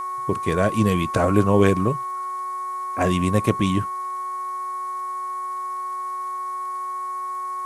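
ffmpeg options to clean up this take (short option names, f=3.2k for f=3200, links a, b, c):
-af "adeclick=t=4,bandreject=f=371.5:t=h:w=4,bandreject=f=743:t=h:w=4,bandreject=f=1.1145k:t=h:w=4,bandreject=f=1.486k:t=h:w=4,bandreject=f=1.8575k:t=h:w=4,bandreject=f=2.229k:t=h:w=4,bandreject=f=1.1k:w=30,afftdn=nr=30:nf=-29"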